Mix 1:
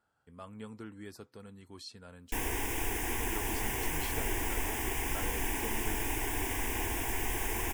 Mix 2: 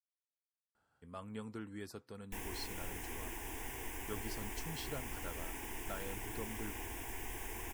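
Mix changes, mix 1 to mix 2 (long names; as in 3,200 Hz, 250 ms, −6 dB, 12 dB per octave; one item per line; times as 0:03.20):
speech: entry +0.75 s
background −10.5 dB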